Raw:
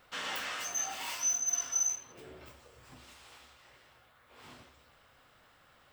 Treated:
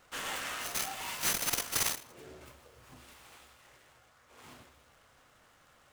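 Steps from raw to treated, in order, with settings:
short delay modulated by noise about 4,400 Hz, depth 0.04 ms

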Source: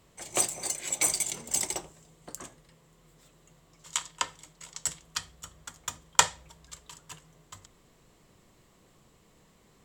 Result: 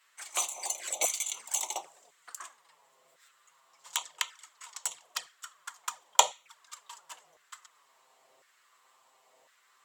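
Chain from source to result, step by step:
flanger swept by the level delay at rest 8.8 ms, full sweep at −30 dBFS
auto-filter high-pass saw down 0.95 Hz 610–1,600 Hz
level +1 dB

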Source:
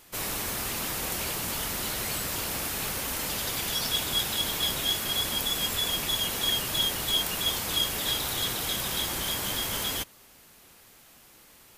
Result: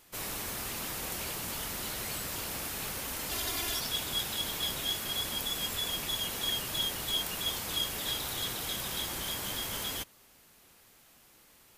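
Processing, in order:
0:03.31–0:03.80: comb filter 2.9 ms, depth 97%
level −5.5 dB

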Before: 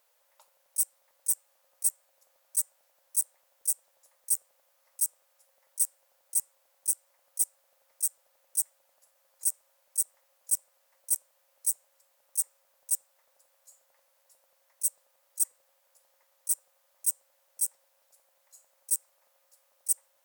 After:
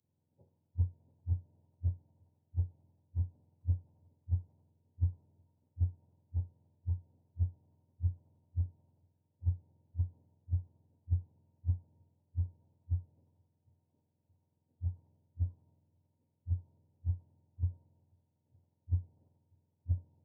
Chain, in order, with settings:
frequency axis turned over on the octave scale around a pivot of 710 Hz
parametric band 1,600 Hz −11.5 dB 2.7 octaves
in parallel at −3 dB: downward compressor, threshold −48 dBFS, peak gain reduction 15.5 dB
on the sum: flutter between parallel walls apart 5.7 metres, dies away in 0.2 s
multiband upward and downward expander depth 70%
level +1 dB

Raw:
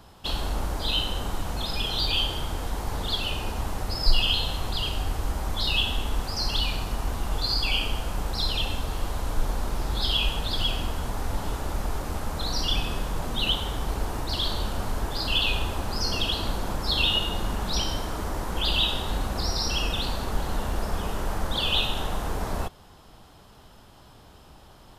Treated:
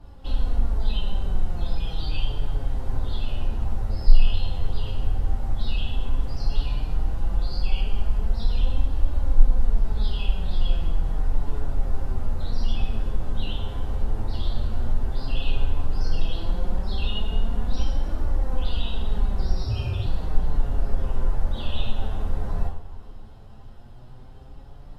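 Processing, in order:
coupled-rooms reverb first 0.43 s, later 1.9 s, from −18 dB, DRR −6 dB
in parallel at +2 dB: downward compressor, threshold −33 dBFS, peak gain reduction 25.5 dB
on the sum: flanger 0.11 Hz, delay 3.3 ms, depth 6.8 ms, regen +40%
0:19.64–0:20.06: frequency shifter −130 Hz
spectral tilt −3 dB per octave
level −12.5 dB

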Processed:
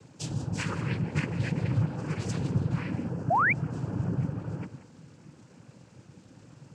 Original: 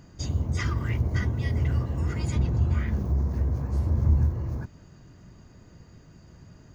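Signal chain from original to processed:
reverb whose tail is shaped and stops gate 210 ms rising, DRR 11.5 dB
cochlear-implant simulation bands 8
sound drawn into the spectrogram rise, 0:03.30–0:03.53, 620–2,500 Hz −23 dBFS

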